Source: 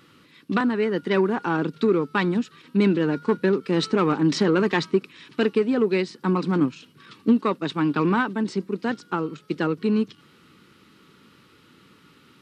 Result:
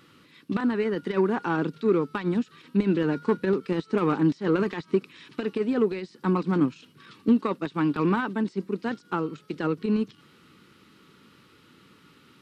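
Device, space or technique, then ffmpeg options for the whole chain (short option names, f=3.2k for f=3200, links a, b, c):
de-esser from a sidechain: -filter_complex "[0:a]asplit=2[a][b];[b]highpass=f=5.1k:w=0.5412,highpass=f=5.1k:w=1.3066,apad=whole_len=547381[c];[a][c]sidechaincompress=threshold=-53dB:ratio=20:attack=1.5:release=48,volume=-1.5dB"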